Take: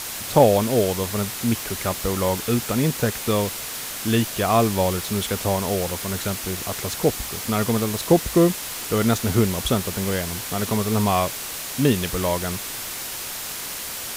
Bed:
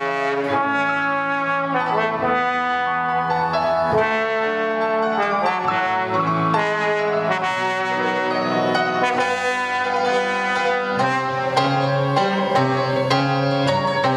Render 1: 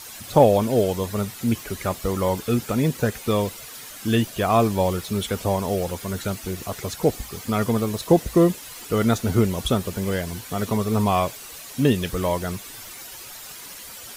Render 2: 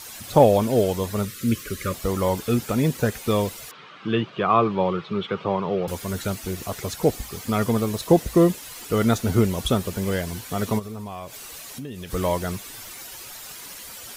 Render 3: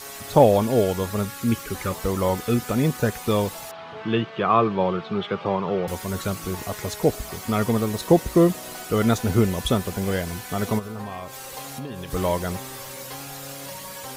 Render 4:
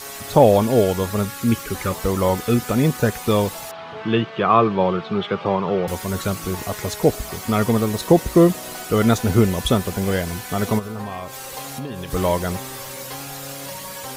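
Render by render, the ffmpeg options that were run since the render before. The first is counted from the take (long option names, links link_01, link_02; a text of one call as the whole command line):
ffmpeg -i in.wav -af "afftdn=noise_reduction=11:noise_floor=-32" out.wav
ffmpeg -i in.wav -filter_complex "[0:a]asettb=1/sr,asplit=3[link_01][link_02][link_03];[link_01]atrim=end=1.254[link_04];[link_02]atrim=start=1.25:end=1.94,asetpts=PTS-STARTPTS,afade=type=in:duration=0.004:curve=qsin,afade=type=out:start_time=0.686:duration=0.004:curve=qsin,asuperstop=centerf=790:order=12:qfactor=1.6[link_05];[link_03]atrim=start=1.936[link_06];[link_04][link_05]acrossfade=duration=0.004:curve1=hsin:curve2=qsin[link_07];[link_07][link_06]acrossfade=duration=0.004:curve1=qsin:curve2=hsin,asettb=1/sr,asplit=3[link_08][link_09][link_10];[link_08]atrim=end=3.714[link_11];[link_09]atrim=start=3.71:end=5.88,asetpts=PTS-STARTPTS,afade=type=in:duration=0.004:curve=qsin,afade=type=out:start_time=2.166:duration=0.004:curve=qsin,highpass=frequency=130:width=0.5412,highpass=frequency=130:width=1.3066,equalizer=frequency=160:width_type=q:width=4:gain=5,equalizer=frequency=250:width_type=q:width=4:gain=-8,equalizer=frequency=380:width_type=q:width=4:gain=3,equalizer=frequency=660:width_type=q:width=4:gain=-5,equalizer=frequency=1200:width_type=q:width=4:gain=8,equalizer=frequency=1800:width_type=q:width=4:gain=-4,lowpass=frequency=3300:width=0.5412,lowpass=frequency=3300:width=1.3066[link_12];[link_10]atrim=start=5.876[link_13];[link_11][link_12]acrossfade=duration=0.004:curve1=hsin:curve2=qsin[link_14];[link_14][link_13]acrossfade=duration=0.004:curve1=qsin:curve2=hsin,asplit=3[link_15][link_16][link_17];[link_15]afade=type=out:start_time=10.78:duration=0.02[link_18];[link_16]acompressor=threshold=-33dB:ratio=5:attack=3.2:release=140:knee=1:detection=peak,afade=type=in:start_time=10.78:duration=0.02,afade=type=out:start_time=12.1:duration=0.02[link_19];[link_17]afade=type=in:start_time=12.1:duration=0.02[link_20];[link_18][link_19][link_20]amix=inputs=3:normalize=0" out.wav
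ffmpeg -i in.wav -i bed.wav -filter_complex "[1:a]volume=-21dB[link_01];[0:a][link_01]amix=inputs=2:normalize=0" out.wav
ffmpeg -i in.wav -af "volume=3.5dB,alimiter=limit=-3dB:level=0:latency=1" out.wav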